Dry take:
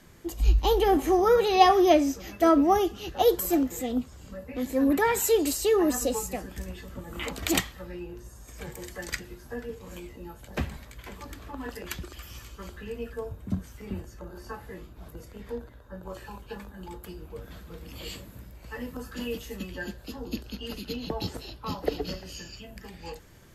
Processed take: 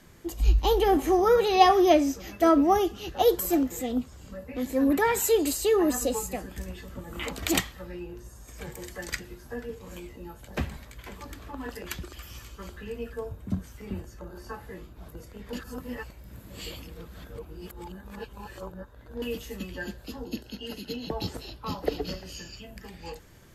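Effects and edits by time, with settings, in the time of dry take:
0:05.27–0:06.59: notch filter 5,600 Hz
0:15.53–0:19.22: reverse
0:20.24–0:21.11: notch comb filter 1,200 Hz

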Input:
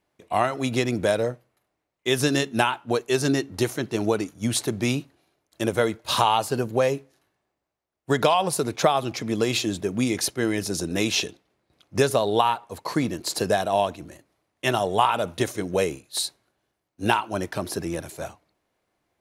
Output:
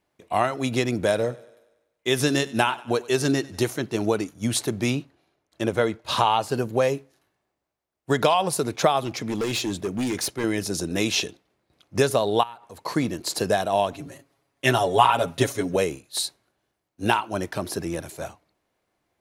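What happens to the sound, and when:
0:01.00–0:03.62: feedback echo with a high-pass in the loop 96 ms, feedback 55%, high-pass 170 Hz, level −20.5 dB
0:04.90–0:06.49: high-shelf EQ 7,500 Hz −11 dB
0:09.02–0:10.44: hard clipping −22 dBFS
0:12.43–0:12.83: downward compressor 3 to 1, threshold −40 dBFS
0:13.92–0:15.76: comb filter 7.3 ms, depth 92%

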